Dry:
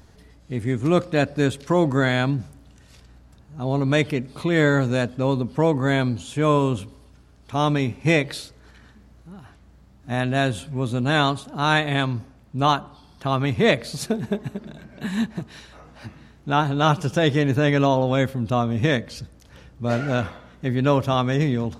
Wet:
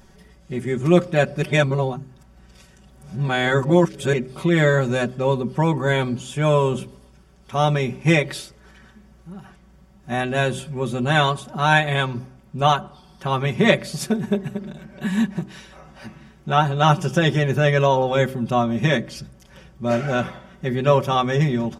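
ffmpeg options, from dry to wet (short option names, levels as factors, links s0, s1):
-filter_complex "[0:a]asplit=3[s0][s1][s2];[s0]atrim=end=1.422[s3];[s1]atrim=start=1.418:end=4.132,asetpts=PTS-STARTPTS,areverse[s4];[s2]atrim=start=4.128[s5];[s3][s4]acrossfade=d=0.004:c1=hsin:c2=hsin[s6];[s6][s5]acrossfade=d=0.004:c1=hsin:c2=hsin,bandreject=f=4100:w=7.1,aecho=1:1:5.3:0.86,bandreject=f=64.07:t=h:w=4,bandreject=f=128.14:t=h:w=4,bandreject=f=192.21:t=h:w=4,bandreject=f=256.28:t=h:w=4,bandreject=f=320.35:t=h:w=4,bandreject=f=384.42:t=h:w=4"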